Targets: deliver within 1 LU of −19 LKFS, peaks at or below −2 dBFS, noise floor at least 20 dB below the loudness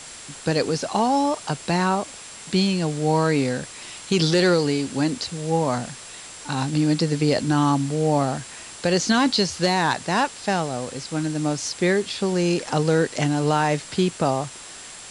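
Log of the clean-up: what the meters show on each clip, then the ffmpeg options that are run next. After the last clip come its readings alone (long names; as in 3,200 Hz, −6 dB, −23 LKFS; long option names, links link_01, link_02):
interfering tone 7,600 Hz; level of the tone −44 dBFS; background noise floor −40 dBFS; target noise floor −43 dBFS; integrated loudness −22.5 LKFS; sample peak −7.5 dBFS; target loudness −19.0 LKFS
→ -af "bandreject=frequency=7600:width=30"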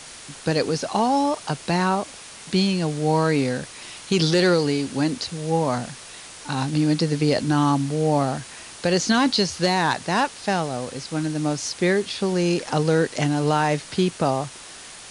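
interfering tone none found; background noise floor −41 dBFS; target noise floor −43 dBFS
→ -af "afftdn=noise_reduction=6:noise_floor=-41"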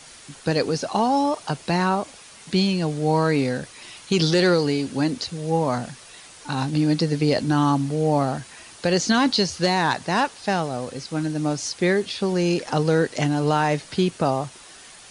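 background noise floor −45 dBFS; integrated loudness −22.5 LKFS; sample peak −8.0 dBFS; target loudness −19.0 LKFS
→ -af "volume=3.5dB"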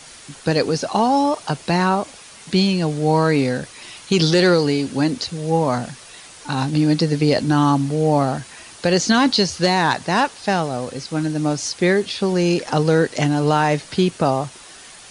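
integrated loudness −19.0 LKFS; sample peak −4.5 dBFS; background noise floor −42 dBFS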